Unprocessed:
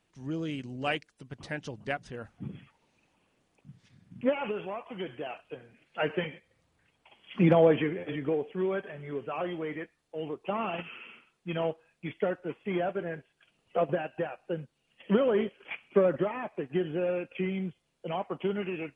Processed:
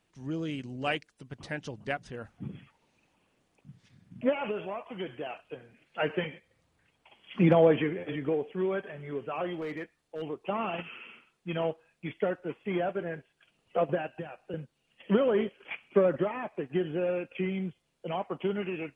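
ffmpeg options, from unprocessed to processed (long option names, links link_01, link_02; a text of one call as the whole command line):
ffmpeg -i in.wav -filter_complex "[0:a]asettb=1/sr,asplit=3[link_01][link_02][link_03];[link_01]atrim=end=4.224[link_04];[link_02]atrim=start=4.22:end=4.83,asetpts=PTS-STARTPTS,afade=type=in:duration=0.004:curve=qsin,afade=type=out:start_time=0.606:duration=0.004:curve=qsin,aeval=exprs='val(0)+0.00447*sin(2*PI*630*n/s)':channel_layout=same[link_05];[link_03]atrim=start=4.826[link_06];[link_04][link_05]acrossfade=duration=0.004:curve1=hsin:curve2=qsin[link_07];[link_07][link_06]acrossfade=duration=0.004:curve1=qsin:curve2=hsin,asettb=1/sr,asplit=3[link_08][link_09][link_10];[link_08]atrim=end=9.544[link_11];[link_09]atrim=start=9.54:end=10.22,asetpts=PTS-STARTPTS,afade=type=in:duration=0.004:curve=qsin,afade=type=out:start_time=0.676:duration=0.004:curve=qsin,asoftclip=type=hard:threshold=-31dB[link_12];[link_10]atrim=start=10.216[link_13];[link_11][link_12]acrossfade=duration=0.004:curve1=hsin:curve2=qsin[link_14];[link_14][link_13]acrossfade=duration=0.004:curve1=qsin:curve2=hsin,asettb=1/sr,asplit=3[link_15][link_16][link_17];[link_15]atrim=end=14.084[link_18];[link_16]atrim=start=14.08:end=14.54,asetpts=PTS-STARTPTS,afade=type=in:duration=0.004:curve=qsin,afade=type=out:start_time=0.456:duration=0.004:curve=qsin,acrossover=split=250|3000[link_19][link_20][link_21];[link_20]acompressor=threshold=-39dB:ratio=6:attack=3.2:release=140:knee=2.83:detection=peak[link_22];[link_19][link_22][link_21]amix=inputs=3:normalize=0[link_23];[link_17]atrim=start=14.536[link_24];[link_18][link_23]acrossfade=duration=0.004:curve1=hsin:curve2=qsin[link_25];[link_25][link_24]acrossfade=duration=0.004:curve1=qsin:curve2=hsin" out.wav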